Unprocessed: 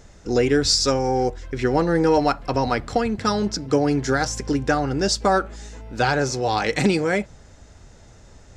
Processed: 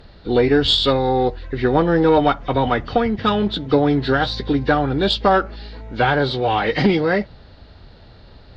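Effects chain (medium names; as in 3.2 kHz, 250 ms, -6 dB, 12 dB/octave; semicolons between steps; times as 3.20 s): knee-point frequency compression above 1.7 kHz 1.5:1; Chebyshev shaper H 2 -18 dB, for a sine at -7 dBFS; trim +3.5 dB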